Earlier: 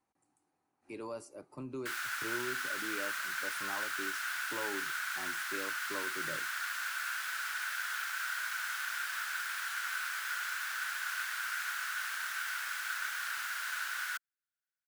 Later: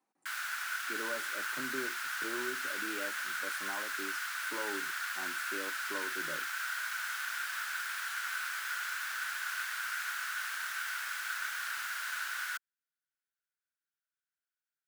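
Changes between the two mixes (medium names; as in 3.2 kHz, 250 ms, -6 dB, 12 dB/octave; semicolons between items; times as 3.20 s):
speech: add high-pass 170 Hz 24 dB/octave; background: entry -1.60 s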